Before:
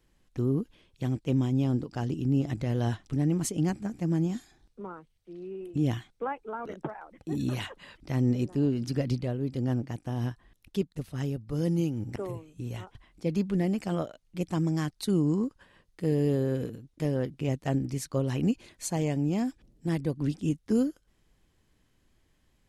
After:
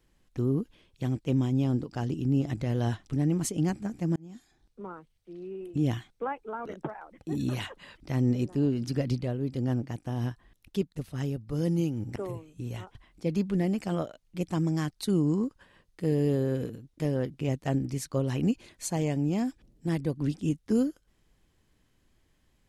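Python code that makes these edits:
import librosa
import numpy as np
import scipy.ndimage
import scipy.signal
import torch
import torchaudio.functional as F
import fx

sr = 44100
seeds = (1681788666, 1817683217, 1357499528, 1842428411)

y = fx.edit(x, sr, fx.fade_in_span(start_s=4.16, length_s=0.74), tone=tone)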